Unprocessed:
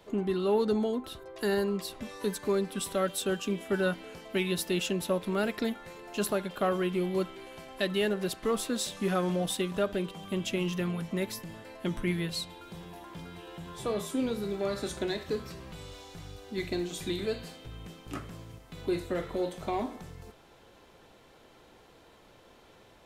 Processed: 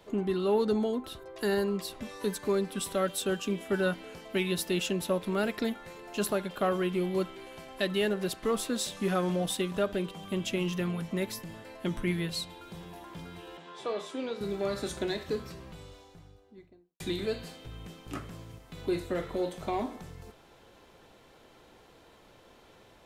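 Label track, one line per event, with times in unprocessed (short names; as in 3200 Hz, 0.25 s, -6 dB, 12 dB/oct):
13.570000	14.410000	BPF 380–4900 Hz
15.230000	17.000000	studio fade out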